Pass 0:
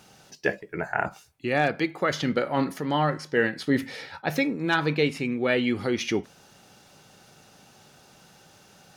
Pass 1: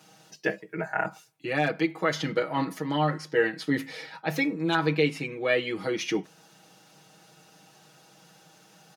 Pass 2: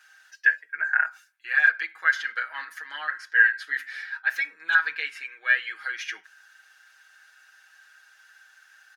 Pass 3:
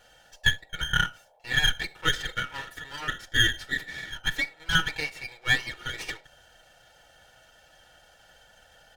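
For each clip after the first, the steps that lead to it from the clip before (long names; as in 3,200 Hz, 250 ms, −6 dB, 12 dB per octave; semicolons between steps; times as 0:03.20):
high-pass filter 140 Hz 24 dB per octave; comb filter 6.3 ms, depth 98%; level −4.5 dB
high-pass with resonance 1,600 Hz, resonance Q 13; level −5.5 dB
lower of the sound and its delayed copy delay 2.2 ms; noise in a band 490–860 Hz −63 dBFS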